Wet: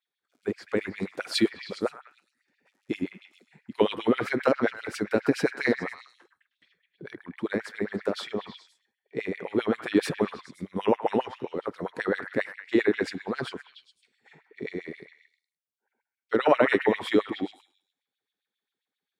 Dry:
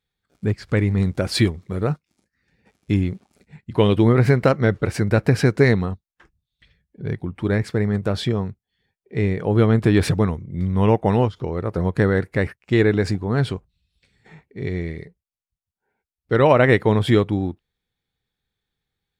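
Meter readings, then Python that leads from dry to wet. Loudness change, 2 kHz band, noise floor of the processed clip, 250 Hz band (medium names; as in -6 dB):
-8.0 dB, -4.5 dB, under -85 dBFS, -8.0 dB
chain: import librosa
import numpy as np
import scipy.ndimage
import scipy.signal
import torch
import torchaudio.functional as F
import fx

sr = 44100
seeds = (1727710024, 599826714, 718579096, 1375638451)

y = fx.echo_stepped(x, sr, ms=104, hz=1300.0, octaves=0.7, feedback_pct=70, wet_db=-6.0)
y = fx.filter_lfo_highpass(y, sr, shape='sine', hz=7.5, low_hz=240.0, high_hz=3300.0, q=2.7)
y = y * librosa.db_to_amplitude(-8.0)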